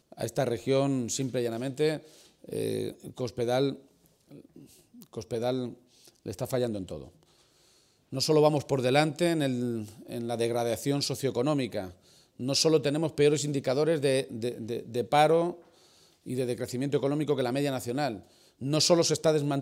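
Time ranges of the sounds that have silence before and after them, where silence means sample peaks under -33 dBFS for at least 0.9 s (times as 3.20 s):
5.02–7.03 s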